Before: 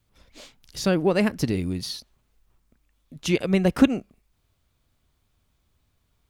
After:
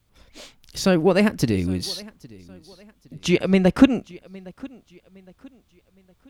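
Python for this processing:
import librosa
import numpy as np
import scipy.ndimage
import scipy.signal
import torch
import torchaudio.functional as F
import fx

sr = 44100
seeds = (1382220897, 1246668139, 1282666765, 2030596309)

p1 = fx.high_shelf(x, sr, hz=11000.0, db=-12.0, at=(3.16, 3.95))
p2 = p1 + fx.echo_feedback(p1, sr, ms=812, feedback_pct=37, wet_db=-22.5, dry=0)
y = p2 * 10.0 ** (3.5 / 20.0)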